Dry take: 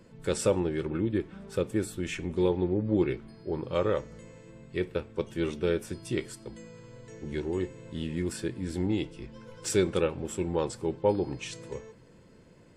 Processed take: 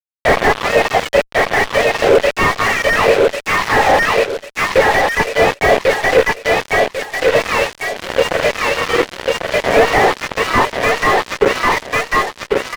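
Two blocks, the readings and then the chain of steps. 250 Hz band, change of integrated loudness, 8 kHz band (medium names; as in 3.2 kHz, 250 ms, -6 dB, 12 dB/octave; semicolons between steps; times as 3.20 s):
+6.0 dB, +16.5 dB, +13.0 dB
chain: spectrum inverted on a logarithmic axis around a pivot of 1 kHz; Chebyshev band-pass 490–1900 Hz, order 3; low-pass that closes with the level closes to 710 Hz, closed at -32 dBFS; Chebyshev shaper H 8 -23 dB, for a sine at -20 dBFS; fuzz box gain 48 dB, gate -49 dBFS; on a send: feedback delay 1095 ms, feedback 31%, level -5 dB; on the sum: loudness maximiser +12.5 dB; slew-rate limiter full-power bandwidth 460 Hz; trim -1 dB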